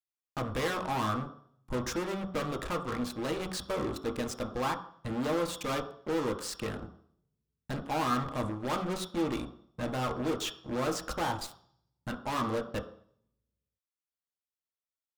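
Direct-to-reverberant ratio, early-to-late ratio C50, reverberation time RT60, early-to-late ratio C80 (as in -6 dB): 2.5 dB, 10.0 dB, 0.60 s, 13.5 dB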